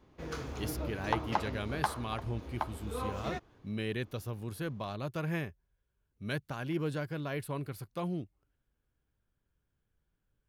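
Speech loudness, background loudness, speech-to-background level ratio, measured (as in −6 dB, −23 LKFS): −38.5 LKFS, −38.5 LKFS, 0.0 dB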